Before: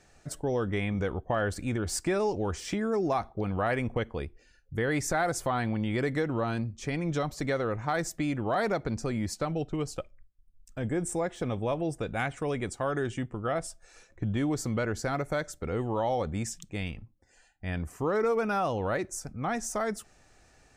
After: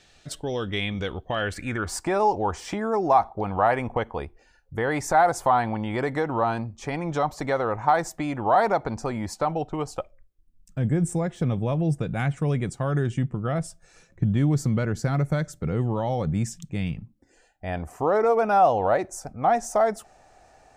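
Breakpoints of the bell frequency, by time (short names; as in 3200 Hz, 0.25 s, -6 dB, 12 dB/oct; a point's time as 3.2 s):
bell +14.5 dB 1 oct
1.32 s 3500 Hz
2 s 870 Hz
10 s 870 Hz
10.78 s 150 Hz
16.97 s 150 Hz
17.68 s 730 Hz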